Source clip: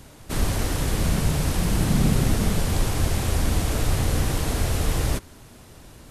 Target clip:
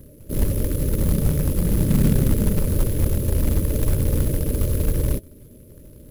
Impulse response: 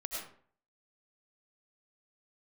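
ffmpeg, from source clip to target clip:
-af "afftfilt=real='re*(1-between(b*sr/4096,630,9900))':imag='im*(1-between(b*sr/4096,630,9900))':win_size=4096:overlap=0.75,acrusher=bits=4:mode=log:mix=0:aa=0.000001,volume=2.5dB"

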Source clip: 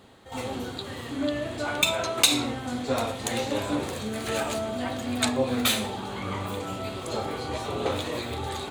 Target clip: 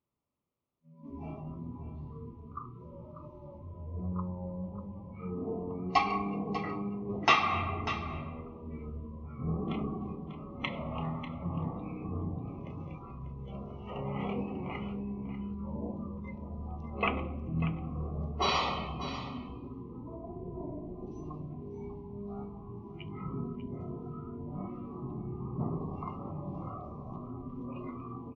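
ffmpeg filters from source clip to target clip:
ffmpeg -i in.wav -filter_complex "[0:a]highpass=frequency=480:poles=1,equalizer=frequency=5200:width=3.6:gain=-9,afftdn=noise_reduction=27:noise_floor=-40,asetrate=13539,aresample=44100,asplit=2[link_01][link_02];[link_02]aecho=0:1:593:0.251[link_03];[link_01][link_03]amix=inputs=2:normalize=0,volume=-5dB" out.wav

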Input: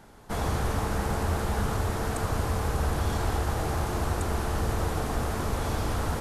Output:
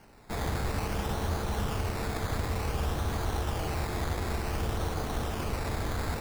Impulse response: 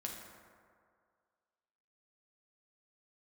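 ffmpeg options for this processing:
-af "acrusher=samples=12:mix=1:aa=0.000001:lfo=1:lforange=7.2:lforate=0.55,volume=-3.5dB"

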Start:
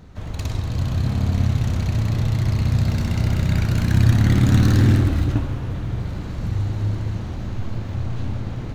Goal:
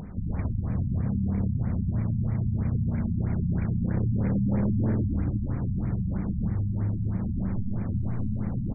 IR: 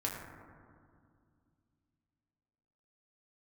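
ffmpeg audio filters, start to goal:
-af "equalizer=frequency=200:width_type=o:width=0.48:gain=10.5,acompressor=mode=upward:threshold=-34dB:ratio=2.5,aresample=8000,asoftclip=type=hard:threshold=-12dB,aresample=44100,acompressor=threshold=-24dB:ratio=5,afftfilt=real='re*lt(b*sr/1024,240*pow(2500/240,0.5+0.5*sin(2*PI*3.1*pts/sr)))':imag='im*lt(b*sr/1024,240*pow(2500/240,0.5+0.5*sin(2*PI*3.1*pts/sr)))':win_size=1024:overlap=0.75"

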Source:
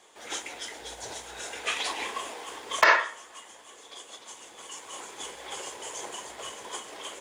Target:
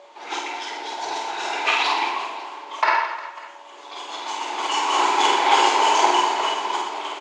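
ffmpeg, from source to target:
ffmpeg -i in.wav -filter_complex "[0:a]aemphasis=mode=production:type=75fm,dynaudnorm=framelen=230:gausssize=11:maxgain=16.5dB,aeval=exprs='val(0)+0.00631*sin(2*PI*570*n/s)':channel_layout=same,highpass=350,equalizer=frequency=350:width_type=q:width=4:gain=4,equalizer=frequency=540:width_type=q:width=4:gain=-9,equalizer=frequency=880:width_type=q:width=4:gain=10,equalizer=frequency=1800:width_type=q:width=4:gain=-6,equalizer=frequency=3300:width_type=q:width=4:gain=-9,lowpass=frequency=3800:width=0.5412,lowpass=frequency=3800:width=1.3066,asplit=2[link_01][link_02];[link_02]adelay=47,volume=-10.5dB[link_03];[link_01][link_03]amix=inputs=2:normalize=0,asplit=2[link_04][link_05];[link_05]aecho=0:1:50|120|218|355.2|547.3:0.631|0.398|0.251|0.158|0.1[link_06];[link_04][link_06]amix=inputs=2:normalize=0,volume=6dB" out.wav

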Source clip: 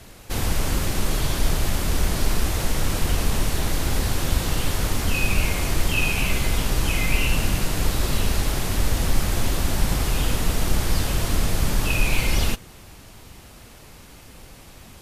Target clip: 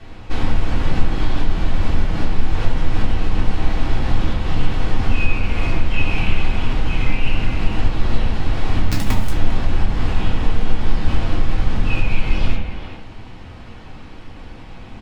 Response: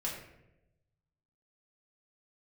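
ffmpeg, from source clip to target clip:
-filter_complex "[0:a]lowpass=3100,lowshelf=frequency=110:gain=3,acompressor=threshold=-20dB:ratio=10,asettb=1/sr,asplit=3[link_01][link_02][link_03];[link_01]atrim=end=8.914[link_04];[link_02]atrim=start=8.91:end=9.31,asetpts=PTS-STARTPTS,afade=type=in:duration=0.004:curve=qsin,afade=type=out:start_time=0.396:duration=0.004:curve=qsin,acrusher=bits=4:dc=4:mix=0:aa=0.000001[link_05];[link_03]atrim=start=9.306[link_06];[link_04][link_05]acrossfade=duration=0.004:curve1=hsin:curve2=qsin[link_07];[link_07][link_06]acrossfade=duration=0.004:curve1=qsin:curve2=hsin,asplit=2[link_08][link_09];[link_09]adelay=400,highpass=300,lowpass=3400,asoftclip=type=hard:threshold=-20dB,volume=-7dB[link_10];[link_08][link_10]amix=inputs=2:normalize=0[link_11];[1:a]atrim=start_sample=2205,asetrate=66150,aresample=44100[link_12];[link_11][link_12]afir=irnorm=-1:irlink=0,volume=6.5dB"

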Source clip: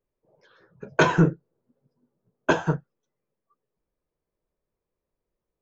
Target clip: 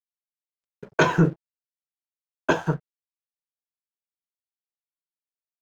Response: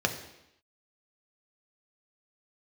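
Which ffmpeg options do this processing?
-af "aeval=exprs='sgn(val(0))*max(abs(val(0))-0.00422,0)':channel_layout=same"

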